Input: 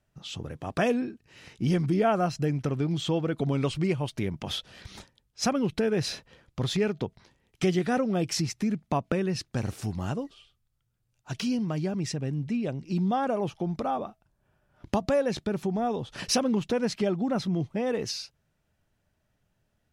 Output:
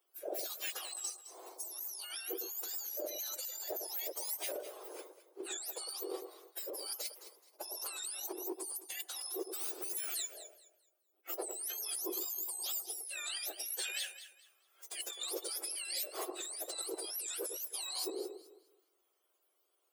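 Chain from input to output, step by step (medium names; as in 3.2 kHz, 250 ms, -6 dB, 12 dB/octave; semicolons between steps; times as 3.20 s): spectrum inverted on a logarithmic axis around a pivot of 1.4 kHz; steep high-pass 340 Hz 72 dB/octave; treble shelf 3.8 kHz +8 dB; compressor with a negative ratio -34 dBFS, ratio -1; echo whose repeats swap between lows and highs 106 ms, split 1.2 kHz, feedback 51%, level -7.5 dB; trim -7.5 dB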